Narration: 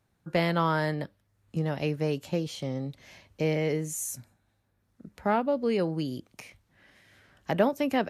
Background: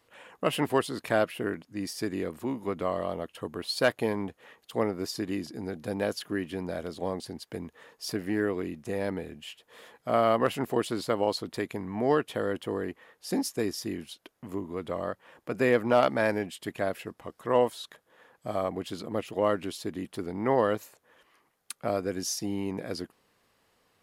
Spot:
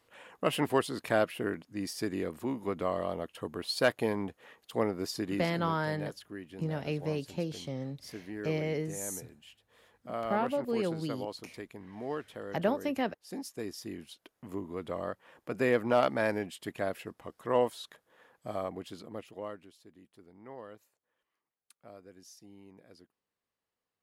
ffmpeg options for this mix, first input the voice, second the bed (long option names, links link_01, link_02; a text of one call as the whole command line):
ffmpeg -i stem1.wav -i stem2.wav -filter_complex "[0:a]adelay=5050,volume=-5dB[link_01];[1:a]volume=6.5dB,afade=type=out:start_time=5.41:duration=0.44:silence=0.316228,afade=type=in:start_time=13.32:duration=1.28:silence=0.375837,afade=type=out:start_time=18.24:duration=1.47:silence=0.11885[link_02];[link_01][link_02]amix=inputs=2:normalize=0" out.wav